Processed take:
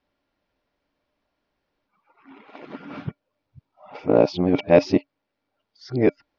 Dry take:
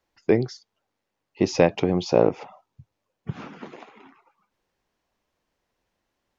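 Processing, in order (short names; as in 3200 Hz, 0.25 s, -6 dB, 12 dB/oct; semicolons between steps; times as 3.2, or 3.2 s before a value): whole clip reversed; steep low-pass 5200 Hz 36 dB/oct; small resonant body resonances 280/600/1400/2300 Hz, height 9 dB, ringing for 0.1 s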